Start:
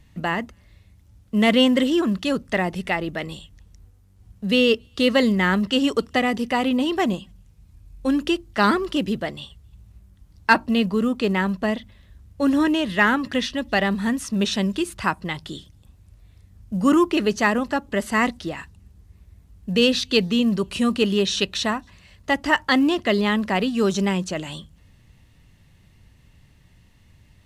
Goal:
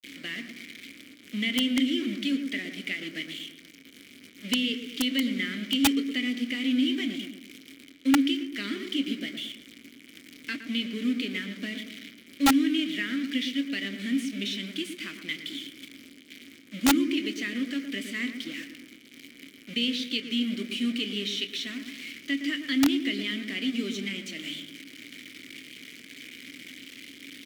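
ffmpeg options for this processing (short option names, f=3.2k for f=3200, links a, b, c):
-filter_complex "[0:a]aeval=exprs='val(0)+0.5*0.0335*sgn(val(0))':c=same,aemphasis=mode=production:type=riaa,agate=range=-33dB:threshold=-26dB:ratio=3:detection=peak,lowshelf=f=250:g=2.5,acompressor=threshold=-23dB:ratio=2.5,acrusher=bits=4:mix=0:aa=0.000001,asplit=3[a][b][c];[a]bandpass=f=270:t=q:w=8,volume=0dB[d];[b]bandpass=f=2.29k:t=q:w=8,volume=-6dB[e];[c]bandpass=f=3.01k:t=q:w=8,volume=-9dB[f];[d][e][f]amix=inputs=3:normalize=0,asplit=2[g][h];[h]adelay=25,volume=-12dB[i];[g][i]amix=inputs=2:normalize=0,asplit=2[j][k];[k]adelay=115,lowpass=f=1.2k:p=1,volume=-6.5dB,asplit=2[l][m];[m]adelay=115,lowpass=f=1.2k:p=1,volume=0.53,asplit=2[n][o];[o]adelay=115,lowpass=f=1.2k:p=1,volume=0.53,asplit=2[p][q];[q]adelay=115,lowpass=f=1.2k:p=1,volume=0.53,asplit=2[r][s];[s]adelay=115,lowpass=f=1.2k:p=1,volume=0.53,asplit=2[t][u];[u]adelay=115,lowpass=f=1.2k:p=1,volume=0.53,asplit=2[v][w];[w]adelay=115,lowpass=f=1.2k:p=1,volume=0.53[x];[j][l][n][p][r][t][v][x]amix=inputs=8:normalize=0,aeval=exprs='(mod(12.6*val(0)+1,2)-1)/12.6':c=same,volume=7.5dB"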